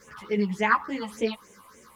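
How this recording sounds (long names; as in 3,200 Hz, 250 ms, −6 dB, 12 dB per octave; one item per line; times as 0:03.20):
phaser sweep stages 6, 3.5 Hz, lowest notch 400–1,300 Hz
a quantiser's noise floor 12 bits, dither triangular
a shimmering, thickened sound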